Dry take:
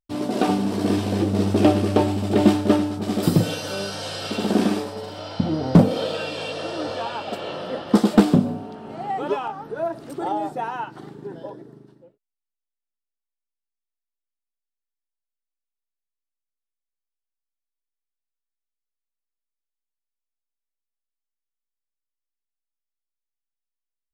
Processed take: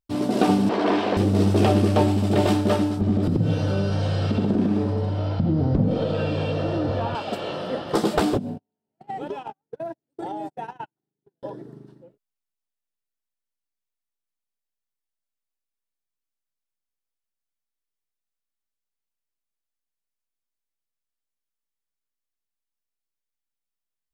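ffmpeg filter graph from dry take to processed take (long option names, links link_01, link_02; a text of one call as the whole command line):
ffmpeg -i in.wav -filter_complex "[0:a]asettb=1/sr,asplit=3[link_01][link_02][link_03];[link_01]atrim=end=0.694[link_04];[link_02]atrim=start=0.69:end=1.17,asetpts=PTS-STARTPTS,afade=type=in:duration=0.004:curve=qsin,afade=type=out:start_time=0.476:duration=0.004:curve=qsin,aeval=exprs='0.335*sin(PI/2*1.78*val(0)/0.335)':channel_layout=same,highpass=490,lowpass=2800[link_05];[link_03]atrim=start=1.166[link_06];[link_04][link_05]acrossfade=duration=0.004:curve1=hsin:curve2=qsin[link_07];[link_07][link_06]acrossfade=duration=0.004:curve1=qsin:curve2=hsin,asettb=1/sr,asplit=3[link_08][link_09][link_10];[link_08]atrim=end=3.014[link_11];[link_09]atrim=start=3.01:end=7.15,asetpts=PTS-STARTPTS,afade=type=in:duration=0.004:curve=qsin,afade=type=out:start_time=4.136:duration=0.004:curve=qsin,aemphasis=mode=reproduction:type=riaa,acompressor=threshold=-22dB:ratio=3:attack=3.2:release=140:knee=1:detection=peak,aecho=1:1:93:0.237,atrim=end_sample=182574[link_12];[link_10]atrim=start=7.146[link_13];[link_11][link_12]acrossfade=duration=0.004:curve1=hsin:curve2=qsin[link_14];[link_14][link_13]acrossfade=duration=0.004:curve1=qsin:curve2=hsin,asettb=1/sr,asplit=3[link_15][link_16][link_17];[link_15]atrim=end=8.374[link_18];[link_16]atrim=start=8.37:end=11.43,asetpts=PTS-STARTPTS,afade=type=in:duration=0.004:curve=qsin,afade=type=out:start_time=3.056:duration=0.004:curve=qsin,agate=range=-50dB:threshold=-28dB:ratio=16:release=100:detection=peak,equalizer=frequency=1200:width_type=o:width=0.32:gain=-11,acompressor=threshold=-28dB:ratio=8:attack=3.2:release=140:knee=1:detection=peak[link_19];[link_17]atrim=start=11.426[link_20];[link_18][link_19]acrossfade=duration=0.004:curve1=hsin:curve2=qsin[link_21];[link_21][link_20]acrossfade=duration=0.004:curve1=qsin:curve2=hsin,afftfilt=real='re*lt(hypot(re,im),1.12)':imag='im*lt(hypot(re,im),1.12)':win_size=1024:overlap=0.75,equalizer=frequency=110:width_type=o:width=3:gain=4" out.wav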